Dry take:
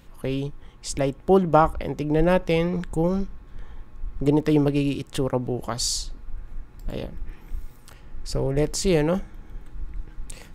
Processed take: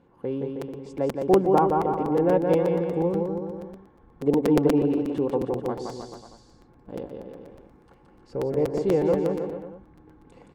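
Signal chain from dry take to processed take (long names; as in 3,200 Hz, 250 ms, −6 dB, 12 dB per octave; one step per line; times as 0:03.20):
resonant band-pass 610 Hz, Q 0.87
tilt shelving filter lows +4 dB, about 680 Hz
notch comb filter 630 Hz
bouncing-ball delay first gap 170 ms, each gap 0.85×, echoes 5
regular buffer underruns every 0.12 s, samples 256, repeat, from 0:00.61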